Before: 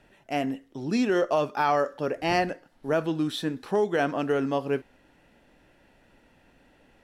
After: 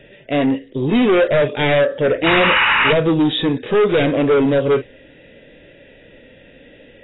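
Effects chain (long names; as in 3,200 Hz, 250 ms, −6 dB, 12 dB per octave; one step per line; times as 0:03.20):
wavefolder on the positive side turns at −22 dBFS
octave-band graphic EQ 125/500/1,000/2,000/4,000 Hz +5/+11/−4/+5/+8 dB
harmonic and percussive parts rebalanced harmonic +8 dB
flat-topped bell 1,000 Hz −9 dB 1.2 octaves
sound drawn into the spectrogram noise, 0:02.26–0:02.93, 830–3,000 Hz −16 dBFS
soft clipping −15 dBFS, distortion −9 dB
level +4.5 dB
AAC 16 kbit/s 16,000 Hz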